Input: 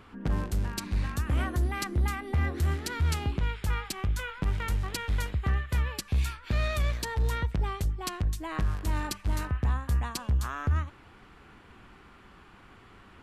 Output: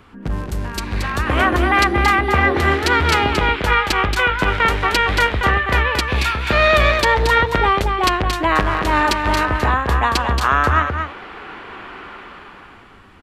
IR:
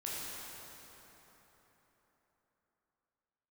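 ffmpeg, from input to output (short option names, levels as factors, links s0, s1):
-filter_complex "[0:a]acrossover=split=320|4000[s0][s1][s2];[s1]dynaudnorm=f=160:g=13:m=6.31[s3];[s0][s3][s2]amix=inputs=3:normalize=0,aecho=1:1:227:0.501,volume=1.78"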